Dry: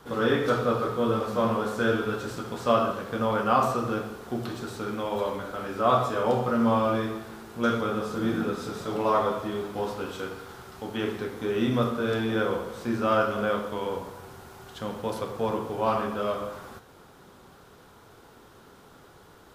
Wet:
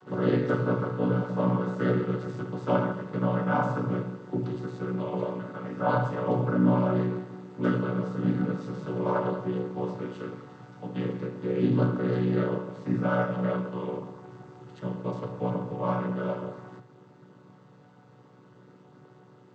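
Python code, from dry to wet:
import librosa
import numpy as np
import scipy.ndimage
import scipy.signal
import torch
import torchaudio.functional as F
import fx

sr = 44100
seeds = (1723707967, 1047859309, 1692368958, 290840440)

y = fx.chord_vocoder(x, sr, chord='minor triad', root=47)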